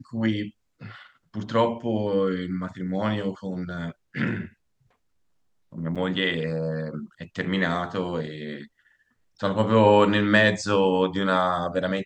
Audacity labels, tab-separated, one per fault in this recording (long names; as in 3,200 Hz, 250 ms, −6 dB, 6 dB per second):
5.950000	5.960000	drop-out 6.6 ms